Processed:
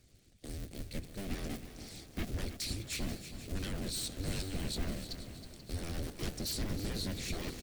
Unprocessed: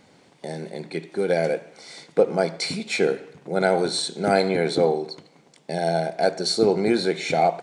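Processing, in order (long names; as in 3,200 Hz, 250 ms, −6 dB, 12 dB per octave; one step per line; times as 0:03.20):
sub-harmonics by changed cycles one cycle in 2, inverted
high-shelf EQ 5,400 Hz +9.5 dB
notch filter 940 Hz, Q 6
sine wavefolder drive 13 dB, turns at −4.5 dBFS
guitar amp tone stack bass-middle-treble 10-0-1
harmonic and percussive parts rebalanced harmonic −9 dB
on a send: echo with shifted repeats 484 ms, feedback 48%, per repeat +50 Hz, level −15 dB
on the sum: feedback echo at a low word length 320 ms, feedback 55%, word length 8 bits, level −11 dB
level −6 dB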